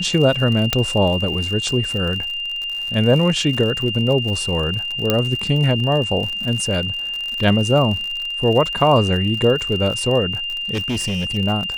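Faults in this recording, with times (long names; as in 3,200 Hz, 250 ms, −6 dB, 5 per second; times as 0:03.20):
surface crackle 66 per second −25 dBFS
whistle 2,800 Hz −23 dBFS
0:00.73: click −1 dBFS
0:05.10: click −2 dBFS
0:10.73–0:11.37: clipping −18.5 dBFS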